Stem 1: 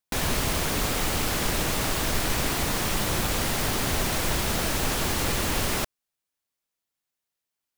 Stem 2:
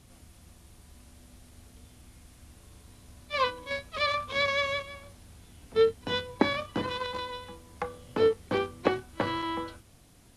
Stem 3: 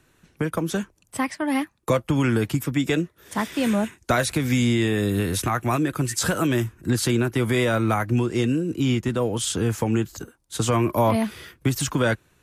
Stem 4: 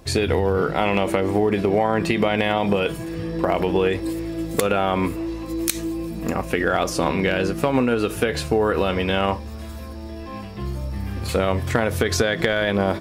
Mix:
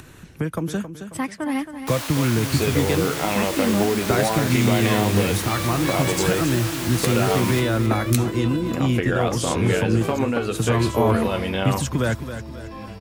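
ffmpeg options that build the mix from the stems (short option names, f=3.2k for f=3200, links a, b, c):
-filter_complex "[0:a]highpass=770,flanger=delay=18.5:depth=6:speed=1.2,adelay=1750,volume=0.5dB,asplit=2[a][b];[b]volume=-8.5dB[c];[1:a]adelay=1500,volume=-3.5dB[d];[2:a]equalizer=f=94:w=0.5:g=6,volume=-3dB,asplit=2[e][f];[f]volume=-10.5dB[g];[3:a]flanger=delay=9.3:depth=3.6:regen=-55:speed=1.4:shape=triangular,adelay=2450,volume=0.5dB[h];[c][g]amix=inputs=2:normalize=0,aecho=0:1:270|540|810|1080|1350:1|0.39|0.152|0.0593|0.0231[i];[a][d][e][h][i]amix=inputs=5:normalize=0,acompressor=mode=upward:threshold=-30dB:ratio=2.5"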